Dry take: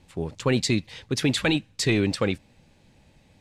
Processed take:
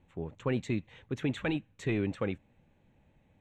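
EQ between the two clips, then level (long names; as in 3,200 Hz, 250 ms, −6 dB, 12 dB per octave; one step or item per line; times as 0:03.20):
moving average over 9 samples
−8.0 dB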